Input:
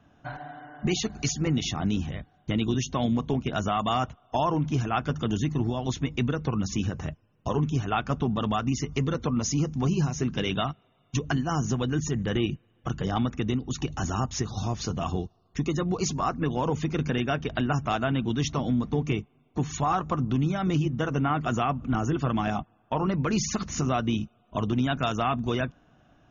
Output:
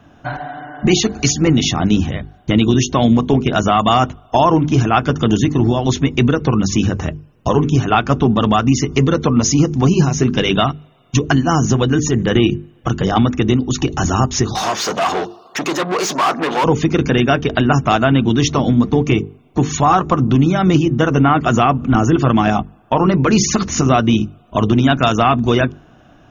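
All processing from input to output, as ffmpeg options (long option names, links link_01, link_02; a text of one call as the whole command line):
ffmpeg -i in.wav -filter_complex "[0:a]asettb=1/sr,asplit=3[link_01][link_02][link_03];[link_01]atrim=end=14.554[link_04];[link_02]atrim=start=14.55:end=16.64,asetpts=PTS-STARTPTS,afade=type=in:duration=0.004:curve=qsin,afade=type=out:start_time=2.086:duration=0.004:curve=qsin,equalizer=frequency=2000:width_type=o:width=1.8:gain=-5,asplit=2[link_05][link_06];[link_06]highpass=frequency=720:poles=1,volume=30dB,asoftclip=type=tanh:threshold=-16dB[link_07];[link_05][link_07]amix=inputs=2:normalize=0,lowpass=frequency=1500:poles=1,volume=-6dB,highpass=frequency=1100:poles=1[link_08];[link_03]atrim=start=16.636[link_09];[link_04][link_08]acrossfade=duration=0.004:curve1=hsin:curve2=qsin[link_10];[link_10][link_09]acrossfade=duration=0.004:curve1=qsin:curve2=hsin,equalizer=frequency=340:width_type=o:width=0.77:gain=3,bandreject=frequency=50:width_type=h:width=6,bandreject=frequency=100:width_type=h:width=6,bandreject=frequency=150:width_type=h:width=6,bandreject=frequency=200:width_type=h:width=6,bandreject=frequency=250:width_type=h:width=6,bandreject=frequency=300:width_type=h:width=6,bandreject=frequency=350:width_type=h:width=6,bandreject=frequency=400:width_type=h:width=6,bandreject=frequency=450:width_type=h:width=6,acontrast=49,volume=7dB" out.wav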